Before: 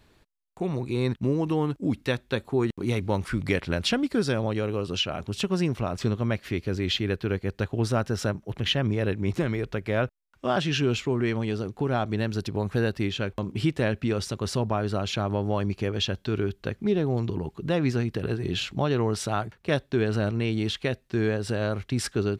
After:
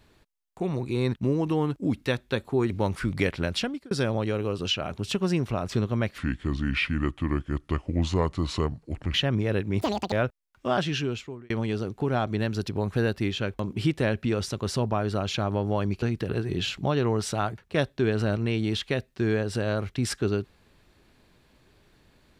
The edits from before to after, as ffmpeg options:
-filter_complex "[0:a]asplit=9[a][b][c][d][e][f][g][h][i];[a]atrim=end=2.702[j];[b]atrim=start=2.988:end=4.2,asetpts=PTS-STARTPTS,afade=t=out:st=0.582:d=0.63:c=qsin[k];[c]atrim=start=4.2:end=6.474,asetpts=PTS-STARTPTS,afade=t=in:d=0.004:c=hsin[l];[d]atrim=start=6.47:end=8.66,asetpts=PTS-STARTPTS,asetrate=32634,aresample=44100,atrim=end_sample=130512,asetpts=PTS-STARTPTS[m];[e]atrim=start=8.656:end=9.334[n];[f]atrim=start=9.33:end=9.91,asetpts=PTS-STARTPTS,asetrate=82026,aresample=44100[o];[g]atrim=start=9.906:end=11.29,asetpts=PTS-STARTPTS,afade=t=out:st=0.634:d=0.75[p];[h]atrim=start=11.29:end=15.812,asetpts=PTS-STARTPTS,afade=t=in:d=0.004:c=hsin[q];[i]atrim=start=17.958[r];[k][l]concat=n=2:v=0:a=1[s];[j][s]acrossfade=d=0.004:c1=hsin:c2=hsin[t];[t][m]acrossfade=d=0.004:c1=hsin:c2=hsin[u];[u][n]acrossfade=d=0.004:c1=hsin:c2=hsin[v];[v][o]acrossfade=d=0.004:c1=hsin:c2=hsin[w];[p][q]concat=n=2:v=0:a=1[x];[w][x]acrossfade=d=0.004:c1=hsin:c2=hsin[y];[y][r]acrossfade=d=0.004:c1=hsin:c2=hsin"

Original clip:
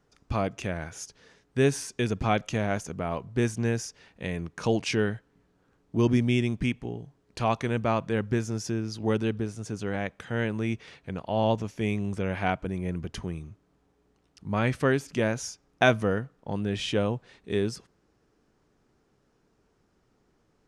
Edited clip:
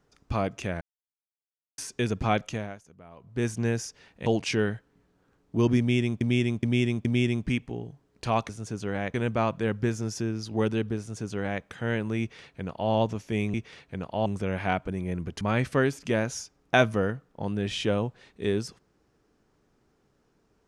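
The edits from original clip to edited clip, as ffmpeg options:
-filter_complex "[0:a]asplit=14[a][b][c][d][e][f][g][h][i][j][k][l][m][n];[a]atrim=end=0.81,asetpts=PTS-STARTPTS,afade=t=out:st=0.806:d=0.004:c=hsin[o];[b]atrim=start=0.81:end=1.78,asetpts=PTS-STARTPTS,volume=0[p];[c]atrim=start=1.78:end=2.77,asetpts=PTS-STARTPTS,afade=t=in:d=0.004:c=hsin,afade=t=out:st=0.63:d=0.36:silence=0.11885[q];[d]atrim=start=2.77:end=3.16,asetpts=PTS-STARTPTS,volume=-18.5dB[r];[e]atrim=start=3.16:end=4.262,asetpts=PTS-STARTPTS,afade=t=in:d=0.36:silence=0.11885[s];[f]atrim=start=4.658:end=6.612[t];[g]atrim=start=6.188:end=6.612[u];[h]atrim=start=6.188:end=6.612[v];[i]atrim=start=6.188:end=7.632[w];[j]atrim=start=9.478:end=10.132[x];[k]atrim=start=7.628:end=12.032[y];[l]atrim=start=10.688:end=11.412[z];[m]atrim=start=12.028:end=13.182[aa];[n]atrim=start=14.488[ab];[o][p][q][r][s]concat=n=5:v=0:a=1[ac];[ac][t]acrossfade=d=0.004:c1=hsin:c2=hsin[ad];[ad][u]acrossfade=d=0.004:c1=hsin:c2=hsin[ae];[ae][v]acrossfade=d=0.004:c1=hsin:c2=hsin[af];[af][w]acrossfade=d=0.004:c1=hsin:c2=hsin[ag];[ag][x]acrossfade=d=0.004:c1=hsin:c2=hsin[ah];[ah][y]acrossfade=d=0.004:c1=hsin:c2=hsin[ai];[ai][z]acrossfade=d=0.004:c1=hsin:c2=hsin[aj];[aj][aa]acrossfade=d=0.004:c1=hsin:c2=hsin[ak];[ak][ab]acrossfade=d=0.004:c1=hsin:c2=hsin"

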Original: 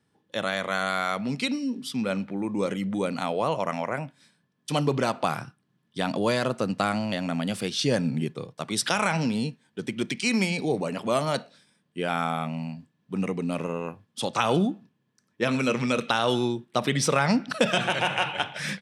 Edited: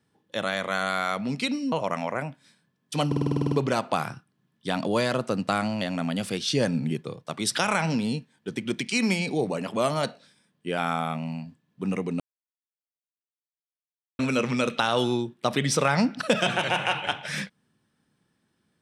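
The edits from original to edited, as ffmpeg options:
-filter_complex "[0:a]asplit=13[a][b][c][d][e][f][g][h][i][j][k][l][m];[a]atrim=end=1.722[n];[b]atrim=start=3.478:end=4.882[o];[c]atrim=start=4.828:end=4.882[p];[d]atrim=start=4.828:end=4.882[q];[e]atrim=start=4.828:end=4.882[r];[f]atrim=start=4.828:end=4.882[s];[g]atrim=start=4.828:end=4.882[t];[h]atrim=start=4.828:end=4.882[u];[i]atrim=start=4.828:end=4.882[v];[j]atrim=start=4.828:end=4.882[w];[k]atrim=start=4.828:end=13.51,asetpts=PTS-STARTPTS,afade=t=out:st=8.678:d=0.004:c=hsin[x];[l]atrim=start=13.51:end=15.5,asetpts=PTS-STARTPTS,volume=0[y];[m]atrim=start=15.5,asetpts=PTS-STARTPTS,afade=t=in:d=0.004:c=hsin[z];[n][o]acrossfade=d=0.004:c1=hsin:c2=hsin[aa];[aa][p]acrossfade=d=0.004:c1=hsin:c2=hsin[ab];[ab][q]acrossfade=d=0.004:c1=hsin:c2=hsin[ac];[ac][r]acrossfade=d=0.004:c1=hsin:c2=hsin[ad];[ad][s]acrossfade=d=0.004:c1=hsin:c2=hsin[ae];[ae][t]acrossfade=d=0.004:c1=hsin:c2=hsin[af];[af][u]acrossfade=d=0.004:c1=hsin:c2=hsin[ag];[ag][v]acrossfade=d=0.004:c1=hsin:c2=hsin[ah];[ah][w]acrossfade=d=0.004:c1=hsin:c2=hsin[ai];[x][y][z]concat=n=3:v=0:a=1[aj];[ai][aj]acrossfade=d=0.004:c1=hsin:c2=hsin"

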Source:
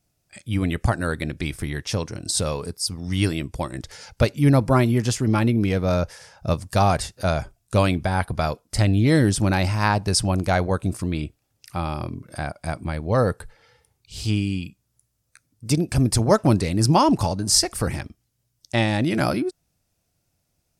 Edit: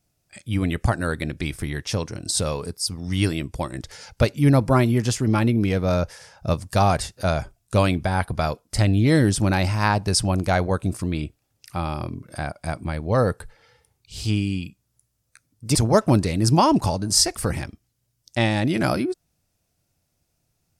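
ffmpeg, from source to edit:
-filter_complex "[0:a]asplit=2[a][b];[a]atrim=end=15.752[c];[b]atrim=start=16.118[d];[c][d]acrossfade=d=0.004:c1=hsin:c2=hsin"

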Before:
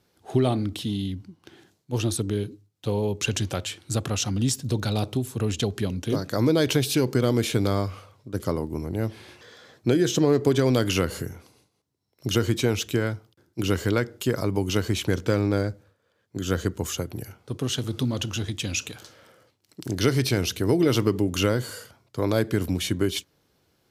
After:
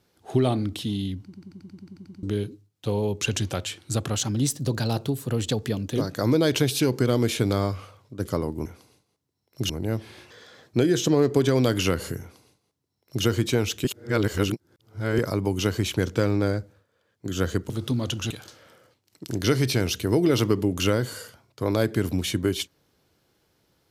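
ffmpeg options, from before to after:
-filter_complex "[0:a]asplit=20[a][b][c][d][e][f][g][h][i][j][k][l][m][n][o][p][q][r][s][t];[a]atrim=end=1.332[u];[b]atrim=start=1.238:end=1.332[v];[c]atrim=start=1.238:end=1.332[w];[d]atrim=start=1.238:end=1.332[x];[e]atrim=start=1.238:end=1.332[y];[f]atrim=start=1.238:end=1.332[z];[g]atrim=start=1.238:end=1.332[aa];[h]atrim=start=1.238:end=1.332[ab];[i]atrim=start=1.238:end=1.332[ac];[j]atrim=start=1.238:end=1.332[ad];[k]atrim=start=1.238:end=1.332[ae];[l]atrim=start=2.228:end=4.144[af];[m]atrim=start=4.14:end=6.1,asetpts=PTS-STARTPTS,asetrate=47628,aresample=44100,atrim=end_sample=80033,asetpts=PTS-STARTPTS[ag];[n]atrim=start=6.096:end=8.802[ah];[o]atrim=start=11.308:end=12.352[ai];[p]atrim=start=8.798:end=12.952[aj];[q]atrim=start=12.948:end=14.292,asetpts=PTS-STARTPTS,areverse[ak];[r]atrim=start=14.288:end=16.802[al];[s]atrim=start=17.808:end=18.422[am];[t]atrim=start=18.868[an];[u][v]acrossfade=d=0.004:c1=hsin:c2=hsin[ao];[ao][w]acrossfade=d=0.004:c1=hsin:c2=hsin[ap];[ap][x]acrossfade=d=0.004:c1=hsin:c2=hsin[aq];[aq][y]acrossfade=d=0.004:c1=hsin:c2=hsin[ar];[ar][z]acrossfade=d=0.004:c1=hsin:c2=hsin[as];[as][aa]acrossfade=d=0.004:c1=hsin:c2=hsin[at];[at][ab]acrossfade=d=0.004:c1=hsin:c2=hsin[au];[au][ac]acrossfade=d=0.004:c1=hsin:c2=hsin[av];[av][ad]acrossfade=d=0.004:c1=hsin:c2=hsin[aw];[aw][ae]acrossfade=d=0.004:c1=hsin:c2=hsin[ax];[ax][af]acrossfade=d=0.004:c1=hsin:c2=hsin[ay];[ay][ag]acrossfade=d=0.004:c1=hsin:c2=hsin[az];[az][ah]acrossfade=d=0.004:c1=hsin:c2=hsin[ba];[ba][ai]acrossfade=d=0.004:c1=hsin:c2=hsin[bb];[bb][aj]acrossfade=d=0.004:c1=hsin:c2=hsin[bc];[bc][ak]acrossfade=d=0.004:c1=hsin:c2=hsin[bd];[bd][al]acrossfade=d=0.004:c1=hsin:c2=hsin[be];[be][am]acrossfade=d=0.004:c1=hsin:c2=hsin[bf];[bf][an]acrossfade=d=0.004:c1=hsin:c2=hsin"

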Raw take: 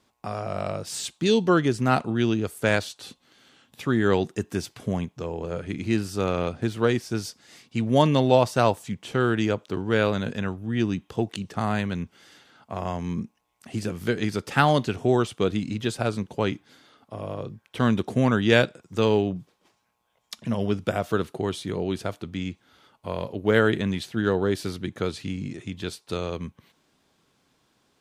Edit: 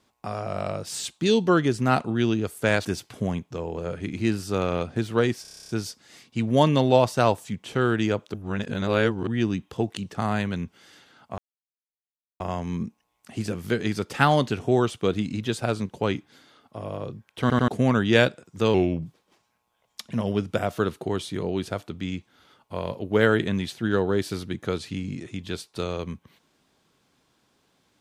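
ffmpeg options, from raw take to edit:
-filter_complex "[0:a]asplit=19[a][b][c][d][e][f][g][h][i][j][k][l][m][n][o][p][q][r][s];[a]atrim=end=2.852[t];[b]atrim=start=4.508:end=7.112[u];[c]atrim=start=7.078:end=7.112[v];[d]atrim=start=7.078:end=7.112[w];[e]atrim=start=7.078:end=7.112[x];[f]atrim=start=7.078:end=7.112[y];[g]atrim=start=7.078:end=7.112[z];[h]atrim=start=7.078:end=7.112[aa];[i]atrim=start=7.078:end=7.112[ab];[j]atrim=start=7.078:end=7.112[ac];[k]atrim=start=7.078:end=9.732[ad];[l]atrim=start=9.728:end=10.662,asetpts=PTS-STARTPTS,areverse[ae];[m]atrim=start=10.658:end=12.77,asetpts=PTS-STARTPTS,afade=t=out:st=2.108:d=0.004:c=hsin,apad=pad_dur=1.02[af];[n]atrim=start=12.77:end=17.872,asetpts=PTS-STARTPTS,afade=t=in:d=0.004:c=hsin[ag];[o]atrim=start=17.778:end=17.872[ah];[p]atrim=start=17.778:end=17.872[ai];[q]atrim=start=18.048:end=19.114[aj];[r]atrim=start=19.11:end=19.38,asetpts=PTS-STARTPTS,asetrate=38808,aresample=44100[ak];[s]atrim=start=19.376[al];[t][u]acrossfade=d=0.004:c1=hsin:c2=hsin[am];[am][v]acrossfade=d=0.004:c1=hsin:c2=hsin[an];[an][w]acrossfade=d=0.004:c1=hsin:c2=hsin[ao];[ao][x]acrossfade=d=0.004:c1=hsin:c2=hsin[ap];[ap][y]acrossfade=d=0.004:c1=hsin:c2=hsin[aq];[aq][z]acrossfade=d=0.004:c1=hsin:c2=hsin[ar];[ar][aa]acrossfade=d=0.004:c1=hsin:c2=hsin[as];[as][ab]acrossfade=d=0.004:c1=hsin:c2=hsin[at];[at][ac]acrossfade=d=0.004:c1=hsin:c2=hsin[au];[au][ad]acrossfade=d=0.004:c1=hsin:c2=hsin[av];[av][ae]acrossfade=d=0.004:c1=hsin:c2=hsin[aw];[af][ag]concat=n=2:v=0:a=1[ax];[aw][ax]acrossfade=d=0.004:c1=hsin:c2=hsin[ay];[ay][ah]acrossfade=d=0.004:c1=hsin:c2=hsin[az];[az][ai]acrossfade=d=0.004:c1=hsin:c2=hsin[ba];[ba][aj]acrossfade=d=0.004:c1=hsin:c2=hsin[bb];[bb][ak]acrossfade=d=0.004:c1=hsin:c2=hsin[bc];[bc][al]acrossfade=d=0.004:c1=hsin:c2=hsin"

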